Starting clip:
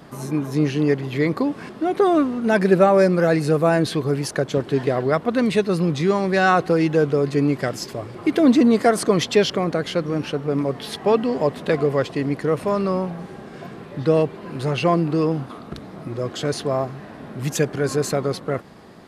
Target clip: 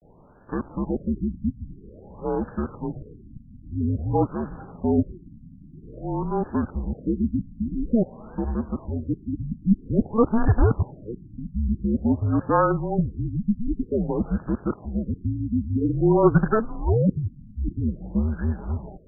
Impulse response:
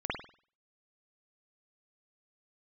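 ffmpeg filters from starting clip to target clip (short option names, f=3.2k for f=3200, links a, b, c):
-filter_complex "[0:a]areverse,asplit=2[a][b];[b]acrusher=bits=3:dc=4:mix=0:aa=0.000001,volume=-5dB[c];[a][c]amix=inputs=2:normalize=0,highpass=f=240:t=q:w=0.5412,highpass=f=240:t=q:w=1.307,lowpass=f=3.1k:t=q:w=0.5176,lowpass=f=3.1k:t=q:w=0.7071,lowpass=f=3.1k:t=q:w=1.932,afreqshift=-220,afftfilt=real='re*lt(b*sr/1024,280*pow(1800/280,0.5+0.5*sin(2*PI*0.5*pts/sr)))':imag='im*lt(b*sr/1024,280*pow(1800/280,0.5+0.5*sin(2*PI*0.5*pts/sr)))':win_size=1024:overlap=0.75,volume=-5.5dB"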